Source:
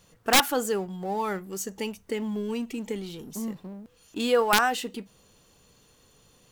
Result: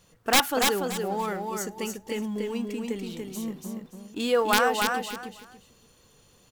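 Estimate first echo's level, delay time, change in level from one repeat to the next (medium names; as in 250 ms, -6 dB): -4.0 dB, 287 ms, -12.5 dB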